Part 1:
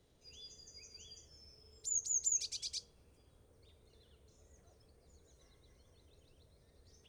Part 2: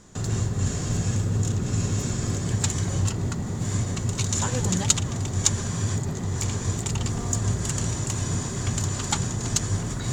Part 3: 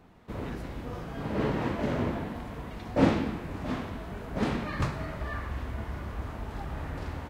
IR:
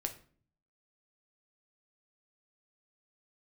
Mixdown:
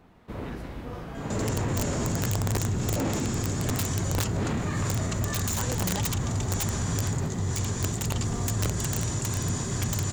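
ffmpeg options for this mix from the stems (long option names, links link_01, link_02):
-filter_complex "[1:a]aeval=exprs='(mod(6.68*val(0)+1,2)-1)/6.68':channel_layout=same,adelay=1150,volume=-0.5dB[link_01];[2:a]volume=0.5dB[link_02];[link_01][link_02]amix=inputs=2:normalize=0,alimiter=limit=-20dB:level=0:latency=1:release=11"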